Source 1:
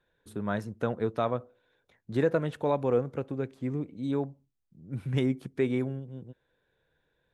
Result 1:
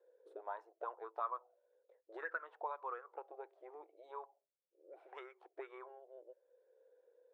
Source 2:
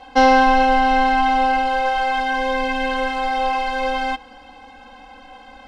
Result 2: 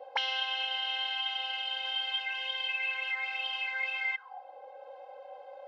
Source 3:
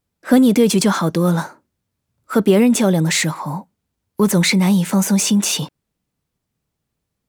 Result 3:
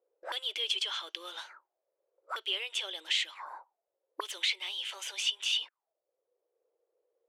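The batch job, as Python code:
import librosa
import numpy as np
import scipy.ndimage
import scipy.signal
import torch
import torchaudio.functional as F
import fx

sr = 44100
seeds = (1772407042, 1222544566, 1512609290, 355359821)

y = fx.auto_wah(x, sr, base_hz=500.0, top_hz=3100.0, q=9.1, full_db=-16.5, direction='up')
y = fx.brickwall_highpass(y, sr, low_hz=320.0)
y = fx.band_squash(y, sr, depth_pct=40)
y = y * librosa.db_to_amplitude(4.0)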